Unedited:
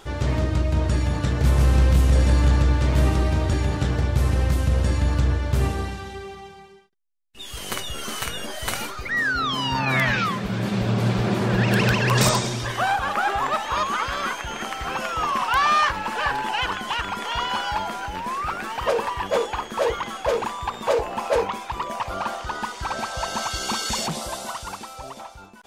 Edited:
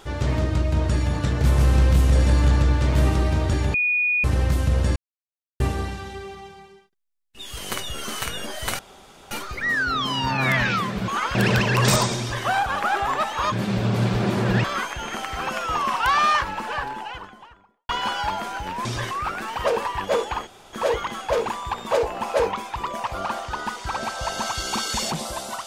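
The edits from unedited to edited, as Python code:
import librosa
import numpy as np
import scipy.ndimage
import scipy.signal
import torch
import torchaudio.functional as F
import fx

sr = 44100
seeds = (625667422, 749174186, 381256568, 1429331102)

y = fx.studio_fade_out(x, sr, start_s=15.67, length_s=1.7)
y = fx.edit(y, sr, fx.bleep(start_s=3.74, length_s=0.5, hz=2460.0, db=-18.0),
    fx.silence(start_s=4.96, length_s=0.64),
    fx.insert_room_tone(at_s=8.79, length_s=0.52),
    fx.swap(start_s=10.56, length_s=1.12, other_s=13.85, other_length_s=0.27),
    fx.duplicate(start_s=12.52, length_s=0.26, to_s=18.33),
    fx.insert_room_tone(at_s=19.69, length_s=0.26), tone=tone)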